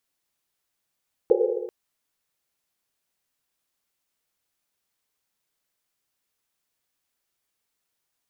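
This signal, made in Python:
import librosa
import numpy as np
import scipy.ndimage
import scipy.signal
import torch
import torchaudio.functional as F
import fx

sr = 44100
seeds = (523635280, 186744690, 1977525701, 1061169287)

y = fx.risset_drum(sr, seeds[0], length_s=0.39, hz=360.0, decay_s=2.01, noise_hz=470.0, noise_width_hz=120.0, noise_pct=75)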